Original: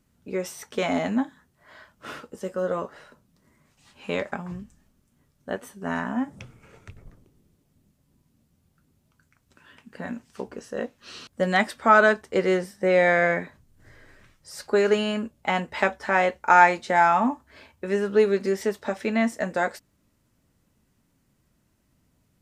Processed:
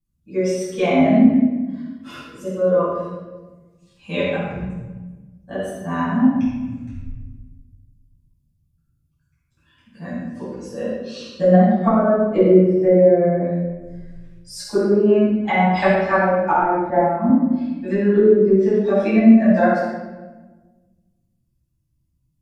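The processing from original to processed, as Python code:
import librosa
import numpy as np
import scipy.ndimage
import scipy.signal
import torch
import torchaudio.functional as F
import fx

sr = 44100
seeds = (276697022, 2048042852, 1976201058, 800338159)

y = fx.bin_expand(x, sr, power=1.5)
y = fx.env_lowpass_down(y, sr, base_hz=330.0, full_db=-20.0)
y = fx.room_shoebox(y, sr, seeds[0], volume_m3=850.0, walls='mixed', distance_m=8.6)
y = fx.band_widen(y, sr, depth_pct=70, at=(16.9, 17.3))
y = F.gain(torch.from_numpy(y), -1.5).numpy()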